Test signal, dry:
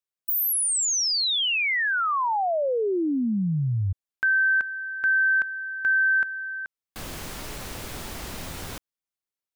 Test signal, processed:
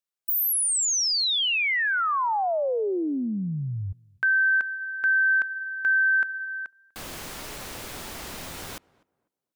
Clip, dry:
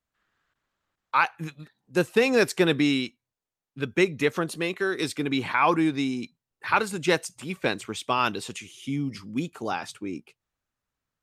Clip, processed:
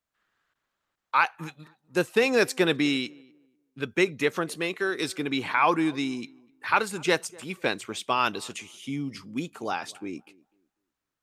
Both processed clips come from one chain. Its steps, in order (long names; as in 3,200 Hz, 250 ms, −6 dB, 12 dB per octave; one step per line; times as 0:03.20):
low-shelf EQ 200 Hz −7.5 dB
on a send: tape delay 247 ms, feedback 27%, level −22.5 dB, low-pass 1,200 Hz